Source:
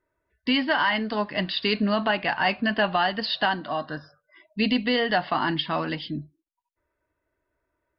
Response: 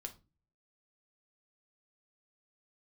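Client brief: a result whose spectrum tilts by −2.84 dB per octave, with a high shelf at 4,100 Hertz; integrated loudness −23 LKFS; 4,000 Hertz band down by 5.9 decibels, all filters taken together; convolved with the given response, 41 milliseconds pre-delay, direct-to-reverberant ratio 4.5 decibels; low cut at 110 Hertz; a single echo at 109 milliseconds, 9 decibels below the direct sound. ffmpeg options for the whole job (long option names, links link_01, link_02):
-filter_complex "[0:a]highpass=110,equalizer=frequency=4000:width_type=o:gain=-7,highshelf=frequency=4100:gain=-3.5,aecho=1:1:109:0.355,asplit=2[link_01][link_02];[1:a]atrim=start_sample=2205,adelay=41[link_03];[link_02][link_03]afir=irnorm=-1:irlink=0,volume=-1dB[link_04];[link_01][link_04]amix=inputs=2:normalize=0,volume=1.5dB"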